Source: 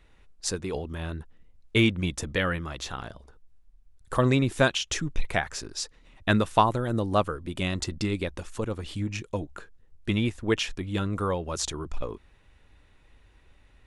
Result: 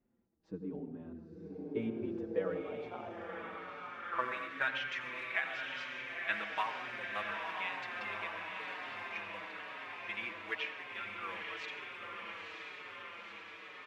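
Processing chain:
low-pass filter 3,100 Hz 12 dB per octave
low-shelf EQ 180 Hz −8 dB
log-companded quantiser 6 bits
feedback delay with all-pass diffusion 961 ms, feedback 71%, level −3.5 dB
band-pass filter sweep 230 Hz → 2,100 Hz, 0:01.21–0:04.85
on a send at −8.5 dB: convolution reverb, pre-delay 76 ms
on the sum: barber-pole flanger 5.2 ms −1 Hz
level +1 dB

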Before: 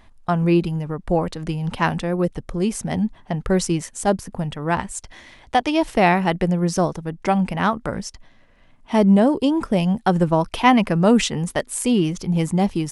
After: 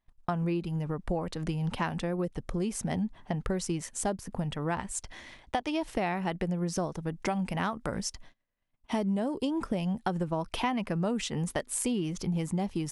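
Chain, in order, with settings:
0:07.09–0:09.47: high-shelf EQ 4,800 Hz +5.5 dB
noise gate −46 dBFS, range −28 dB
downward compressor 6 to 1, threshold −24 dBFS, peak gain reduction 14 dB
level −3.5 dB

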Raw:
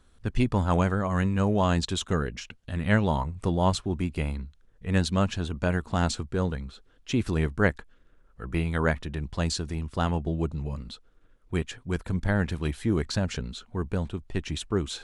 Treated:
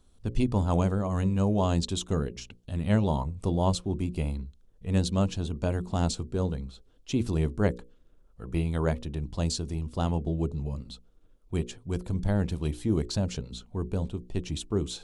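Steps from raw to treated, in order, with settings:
parametric band 1,700 Hz −12.5 dB 1.2 octaves
mains-hum notches 60/120/180/240/300/360/420/480/540 Hz

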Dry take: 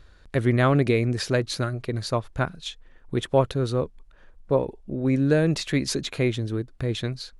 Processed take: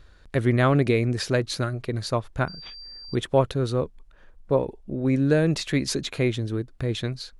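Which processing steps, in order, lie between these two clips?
0:02.48–0:03.15: switching amplifier with a slow clock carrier 4,700 Hz

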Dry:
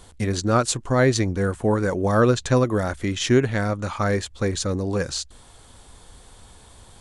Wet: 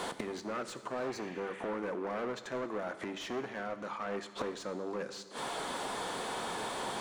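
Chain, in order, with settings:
hard clipping −23 dBFS, distortion −6 dB
high-pass filter 170 Hz 24 dB per octave
gate with flip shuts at −29 dBFS, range −28 dB
healed spectral selection 0:00.98–0:01.69, 1,600–3,800 Hz
mid-hump overdrive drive 27 dB, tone 1,100 Hz, clips at −26.5 dBFS
on a send: convolution reverb RT60 1.7 s, pre-delay 4 ms, DRR 9.5 dB
on the sum: level +4.5 dB

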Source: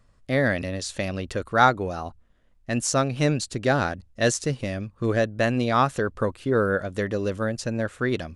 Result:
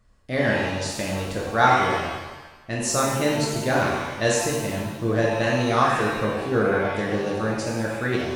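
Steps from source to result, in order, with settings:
reverb with rising layers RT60 1.1 s, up +7 semitones, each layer −8 dB, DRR −3.5 dB
level −3.5 dB

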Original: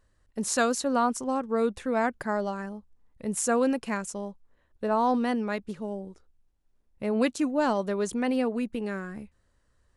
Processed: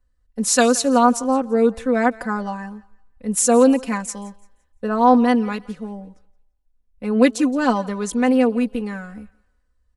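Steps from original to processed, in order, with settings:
comb filter 4 ms, depth 96%
feedback echo with a high-pass in the loop 171 ms, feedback 41%, high-pass 470 Hz, level −19 dB
multiband upward and downward expander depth 40%
level +4.5 dB

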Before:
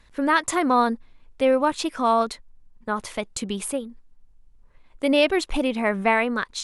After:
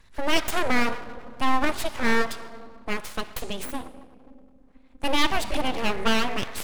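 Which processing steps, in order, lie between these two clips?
rectangular room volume 2,400 cubic metres, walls mixed, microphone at 0.63 metres
0:03.65–0:05.04: ring modulation 130 Hz
full-wave rectification

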